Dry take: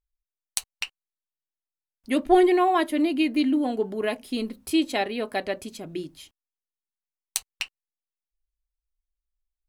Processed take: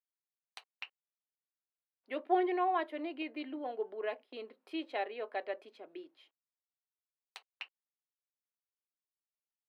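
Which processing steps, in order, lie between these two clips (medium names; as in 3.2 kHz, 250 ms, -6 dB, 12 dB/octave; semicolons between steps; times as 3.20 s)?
3.22–4.50 s: gate -37 dBFS, range -11 dB; high-pass 410 Hz 24 dB/octave; distance through air 390 m; trim -7.5 dB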